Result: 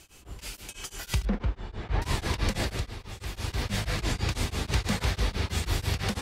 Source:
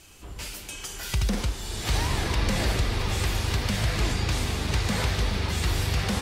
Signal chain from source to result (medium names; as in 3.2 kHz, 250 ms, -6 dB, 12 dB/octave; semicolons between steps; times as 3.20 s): 1.25–2.02 s: low-pass 1.8 kHz 12 dB/octave; 2.53–3.64 s: dip -11.5 dB, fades 0.44 s; tremolo of two beating tones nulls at 6.1 Hz